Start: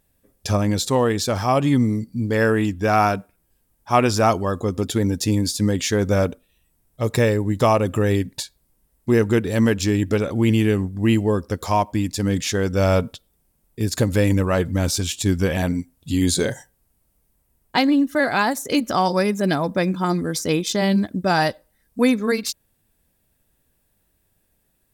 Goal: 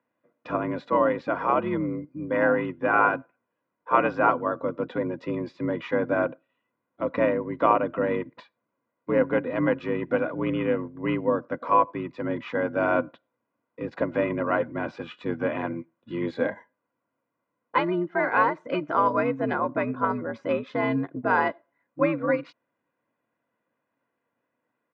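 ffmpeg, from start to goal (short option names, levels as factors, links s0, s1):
-filter_complex "[0:a]highpass=f=190:w=0.5412,highpass=f=190:w=1.3066,equalizer=f=230:t=q:w=4:g=7,equalizer=f=340:t=q:w=4:g=-10,equalizer=f=540:t=q:w=4:g=-6,equalizer=f=1200:t=q:w=4:g=5,equalizer=f=1700:t=q:w=4:g=-3,lowpass=f=2100:w=0.5412,lowpass=f=2100:w=1.3066,aecho=1:1:2.1:0.71,afreqshift=71,asplit=2[s0][s1];[s1]asetrate=22050,aresample=44100,atempo=2,volume=0.398[s2];[s0][s2]amix=inputs=2:normalize=0,volume=0.708"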